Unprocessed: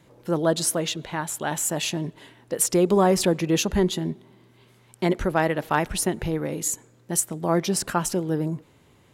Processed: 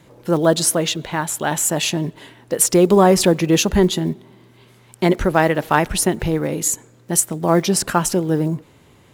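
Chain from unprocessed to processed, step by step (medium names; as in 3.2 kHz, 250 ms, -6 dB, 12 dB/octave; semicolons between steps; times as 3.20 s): block-companded coder 7-bit; trim +6.5 dB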